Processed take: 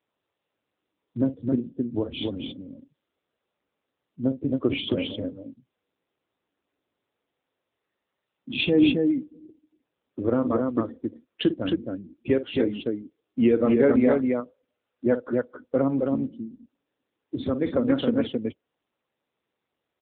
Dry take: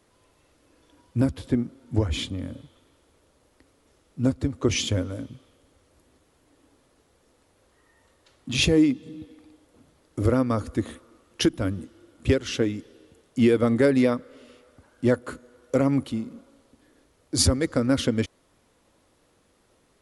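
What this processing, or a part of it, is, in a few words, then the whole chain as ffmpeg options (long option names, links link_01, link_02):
mobile call with aggressive noise cancelling: -filter_complex "[0:a]asettb=1/sr,asplit=3[link_01][link_02][link_03];[link_01]atrim=end=14.134[link_04];[link_02]atrim=start=14.13:end=15.06,asetpts=PTS-STARTPTS,afade=type=in:duration=0.004:curve=qsin,afade=type=out:start_time=0.926:duration=0.004:curve=qsin,bass=frequency=250:gain=-8,treble=frequency=4000:gain=-8[link_05];[link_03]atrim=start=15.056[link_06];[link_04][link_05]acrossfade=duration=0.004:curve1=hsin:curve2=qsin[link_07];[link_07][link_06]acrossfade=duration=0.004:curve1=qsin:curve2=hsin,highpass=180,aecho=1:1:52.48|268.2:0.282|0.708,afftdn=noise_reduction=28:noise_floor=-34" -ar 8000 -c:a libopencore_amrnb -b:a 7950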